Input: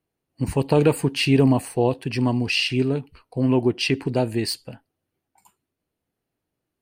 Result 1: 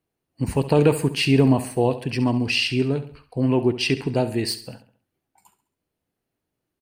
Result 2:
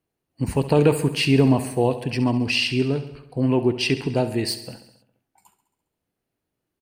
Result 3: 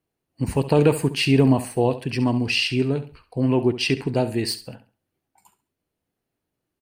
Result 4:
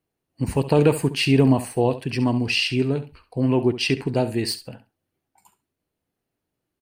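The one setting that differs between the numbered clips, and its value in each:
feedback delay, feedback: 42%, 62%, 26%, 15%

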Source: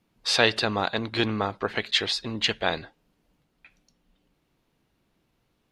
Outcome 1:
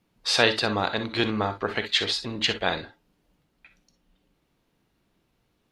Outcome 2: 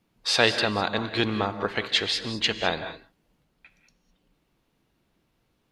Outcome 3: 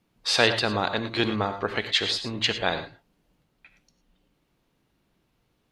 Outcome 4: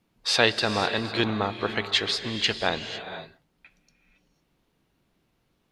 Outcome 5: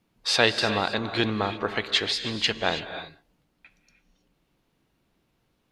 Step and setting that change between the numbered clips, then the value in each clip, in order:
gated-style reverb, gate: 80 ms, 230 ms, 130 ms, 530 ms, 350 ms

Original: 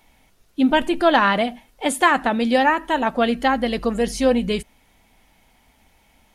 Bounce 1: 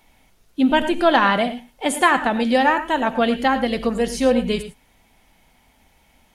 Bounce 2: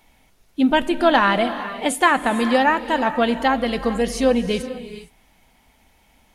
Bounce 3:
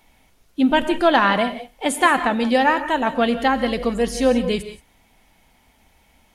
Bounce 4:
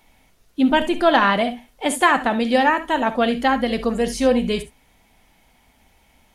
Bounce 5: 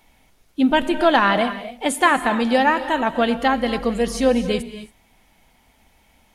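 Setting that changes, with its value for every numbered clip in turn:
gated-style reverb, gate: 130 ms, 490 ms, 200 ms, 90 ms, 300 ms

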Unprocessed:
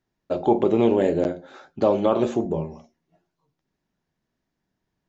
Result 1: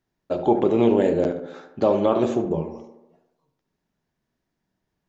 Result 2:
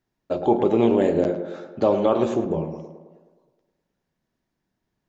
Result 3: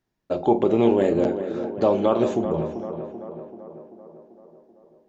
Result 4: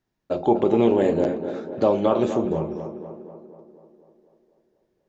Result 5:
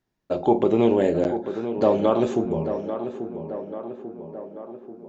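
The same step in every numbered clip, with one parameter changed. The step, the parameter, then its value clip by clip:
tape echo, time: 71 ms, 106 ms, 387 ms, 245 ms, 839 ms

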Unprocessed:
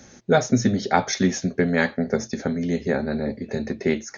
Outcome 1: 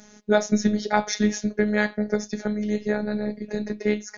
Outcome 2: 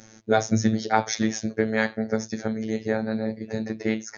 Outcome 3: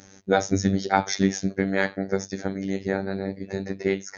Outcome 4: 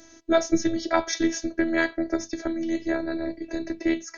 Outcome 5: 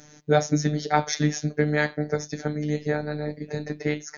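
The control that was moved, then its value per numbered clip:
robot voice, frequency: 210 Hz, 110 Hz, 97 Hz, 330 Hz, 150 Hz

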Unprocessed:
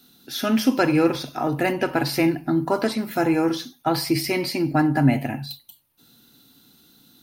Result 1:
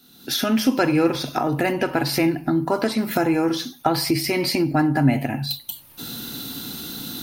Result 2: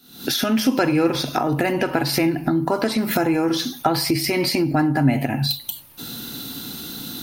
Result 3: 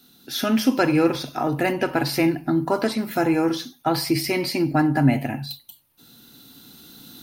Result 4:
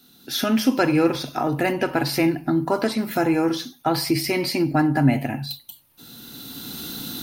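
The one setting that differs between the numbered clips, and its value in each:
recorder AGC, rising by: 34 dB/s, 83 dB/s, 5.6 dB/s, 14 dB/s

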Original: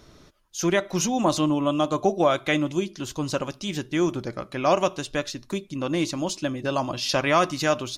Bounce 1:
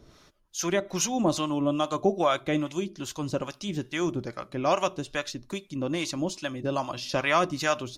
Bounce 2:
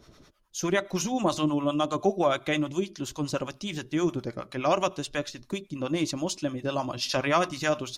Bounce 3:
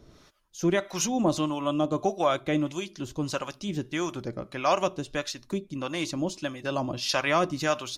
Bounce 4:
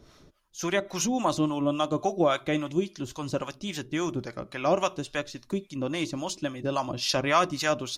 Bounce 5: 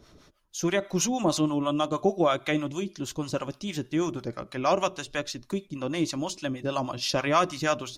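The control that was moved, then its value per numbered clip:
harmonic tremolo, rate: 2.4 Hz, 9.6 Hz, 1.6 Hz, 3.6 Hz, 6.3 Hz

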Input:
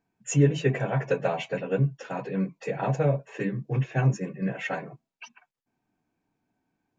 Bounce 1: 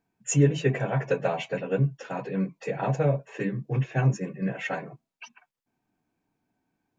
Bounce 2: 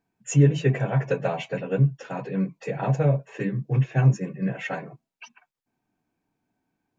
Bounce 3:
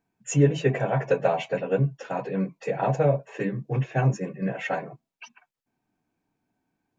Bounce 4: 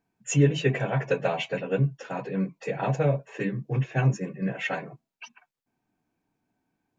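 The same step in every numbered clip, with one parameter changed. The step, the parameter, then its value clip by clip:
dynamic bell, frequency: 8.5 kHz, 120 Hz, 680 Hz, 3.2 kHz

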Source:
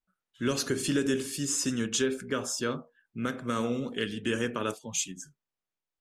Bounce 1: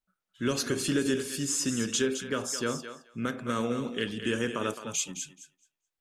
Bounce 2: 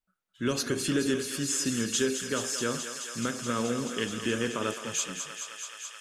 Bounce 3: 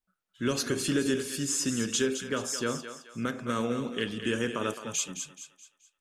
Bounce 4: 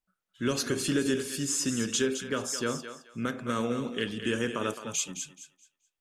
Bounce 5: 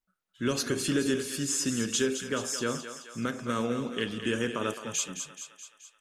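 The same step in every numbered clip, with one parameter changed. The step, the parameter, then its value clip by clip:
thinning echo, feedback: 15%, 90%, 40%, 25%, 60%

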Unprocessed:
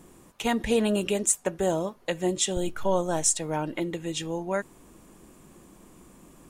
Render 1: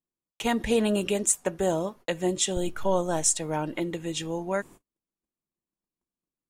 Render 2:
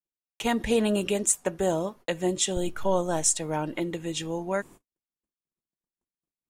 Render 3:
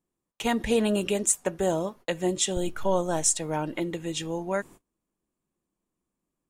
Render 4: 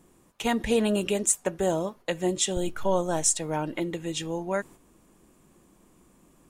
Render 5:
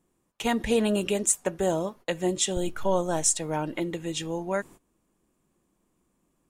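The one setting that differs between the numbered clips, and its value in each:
gate, range: -44 dB, -59 dB, -32 dB, -7 dB, -20 dB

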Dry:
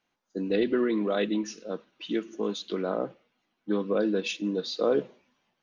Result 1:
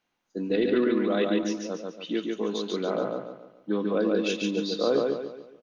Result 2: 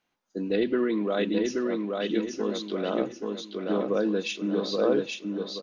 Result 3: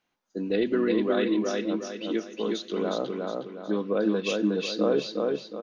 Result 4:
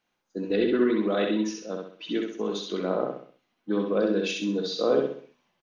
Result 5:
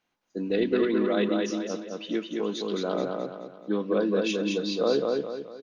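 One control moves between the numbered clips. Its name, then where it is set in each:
feedback delay, time: 142 ms, 828 ms, 363 ms, 65 ms, 214 ms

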